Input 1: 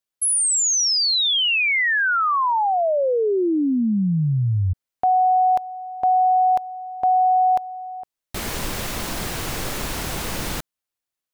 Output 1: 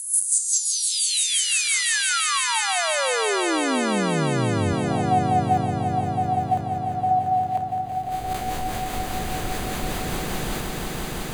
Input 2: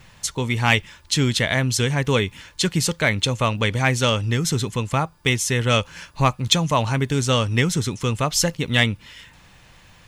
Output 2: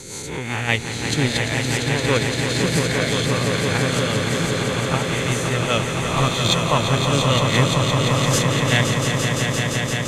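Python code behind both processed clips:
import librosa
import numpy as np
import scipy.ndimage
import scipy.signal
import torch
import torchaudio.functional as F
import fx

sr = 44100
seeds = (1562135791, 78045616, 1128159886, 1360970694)

p1 = fx.spec_swells(x, sr, rise_s=1.22)
p2 = fx.rotary(p1, sr, hz=5.0)
p3 = fx.high_shelf(p2, sr, hz=2100.0, db=-3.5)
p4 = fx.level_steps(p3, sr, step_db=19)
p5 = p3 + F.gain(torch.from_numpy(p4), 0.0).numpy()
p6 = fx.notch(p5, sr, hz=5400.0, q=7.3)
p7 = p6 + fx.echo_swell(p6, sr, ms=172, loudest=5, wet_db=-7, dry=0)
y = F.gain(torch.from_numpy(p7), -6.0).numpy()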